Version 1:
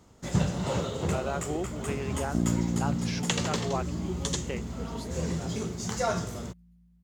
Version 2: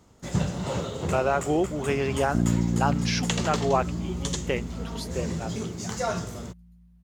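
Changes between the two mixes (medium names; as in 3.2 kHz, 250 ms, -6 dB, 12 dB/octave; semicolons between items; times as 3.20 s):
speech +9.0 dB; second sound: add peaking EQ 67 Hz +7 dB 2.9 oct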